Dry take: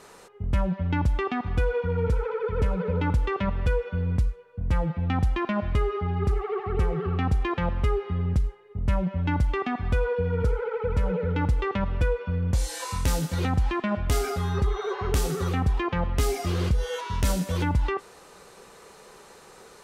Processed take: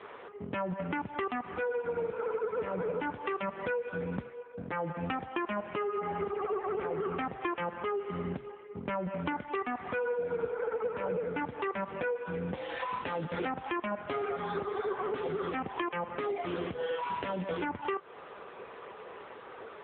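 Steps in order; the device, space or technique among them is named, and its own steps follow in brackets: voicemail (BPF 300–3100 Hz; compressor 10:1, threshold -36 dBFS, peak gain reduction 12 dB; gain +7 dB; AMR-NB 6.7 kbps 8000 Hz)

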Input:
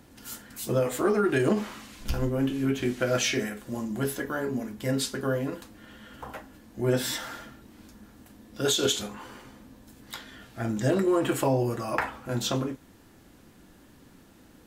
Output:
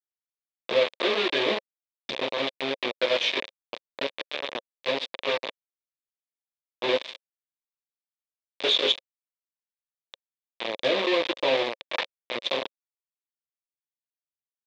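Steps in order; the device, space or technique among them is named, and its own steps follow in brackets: hand-held game console (bit-crush 4-bit; speaker cabinet 450–4100 Hz, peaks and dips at 540 Hz +7 dB, 790 Hz -5 dB, 1400 Hz -10 dB, 2400 Hz +4 dB, 3600 Hz +9 dB)

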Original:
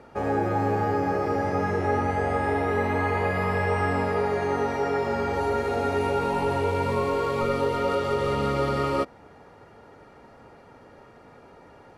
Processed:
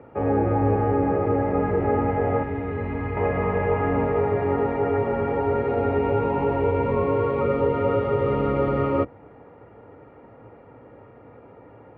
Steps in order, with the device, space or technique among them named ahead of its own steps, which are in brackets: sub-octave bass pedal (octaver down 2 oct, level -1 dB; speaker cabinet 68–2400 Hz, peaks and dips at 76 Hz -7 dB, 110 Hz +9 dB, 290 Hz +6 dB, 490 Hz +6 dB, 1600 Hz -5 dB); 2.43–3.17 bell 660 Hz -10 dB 2.7 oct

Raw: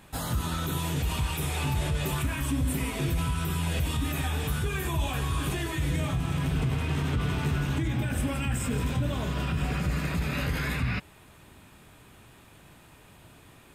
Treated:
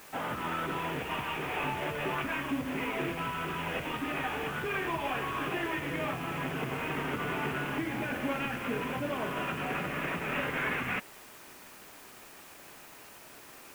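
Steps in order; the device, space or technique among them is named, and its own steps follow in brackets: army field radio (BPF 330–3300 Hz; CVSD 16 kbps; white noise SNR 19 dB); gain +3 dB

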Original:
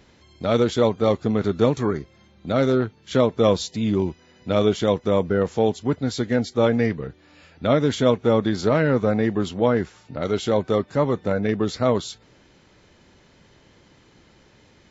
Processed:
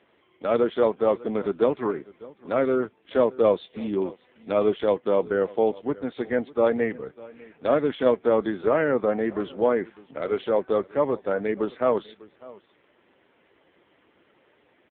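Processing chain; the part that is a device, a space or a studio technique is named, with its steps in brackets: satellite phone (BPF 320–3200 Hz; echo 0.6 s -21 dB; AMR-NB 5.9 kbps 8000 Hz)

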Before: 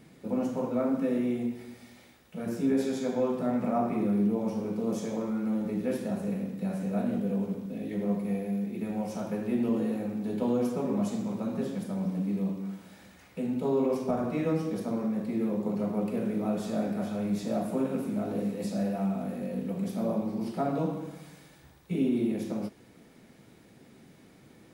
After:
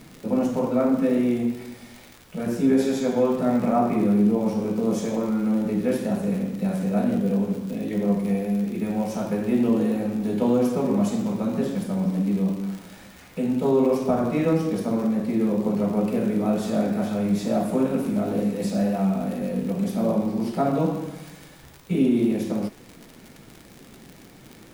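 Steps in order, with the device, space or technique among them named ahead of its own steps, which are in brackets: vinyl LP (wow and flutter 22 cents; crackle 77/s -39 dBFS; pink noise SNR 32 dB); gain +7 dB

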